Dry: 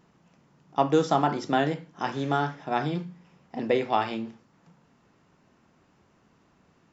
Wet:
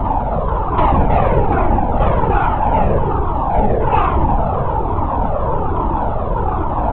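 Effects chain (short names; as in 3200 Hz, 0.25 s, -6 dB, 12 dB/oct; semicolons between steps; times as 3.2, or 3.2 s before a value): per-bin compression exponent 0.2; reverb removal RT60 0.55 s; spectral gate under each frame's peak -10 dB strong; bell 1100 Hz +12.5 dB 0.48 oct; comb 3.4 ms, depth 99%; sample leveller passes 2; air absorption 160 m; on a send: flutter echo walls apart 9.2 m, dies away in 1.1 s; on the sum: LPC vocoder at 8 kHz whisper; cascading flanger falling 1.2 Hz; gain -1.5 dB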